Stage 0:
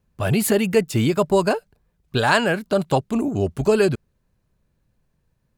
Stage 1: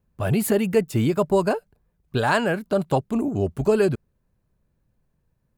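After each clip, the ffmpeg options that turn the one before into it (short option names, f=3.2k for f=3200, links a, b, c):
-af "equalizer=f=4.5k:t=o:w=2.6:g=-6,volume=-1.5dB"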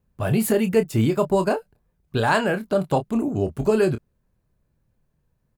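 -filter_complex "[0:a]asplit=2[a][b];[b]adelay=27,volume=-9dB[c];[a][c]amix=inputs=2:normalize=0"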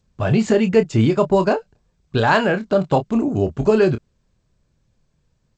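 -af "volume=4dB" -ar 16000 -c:a g722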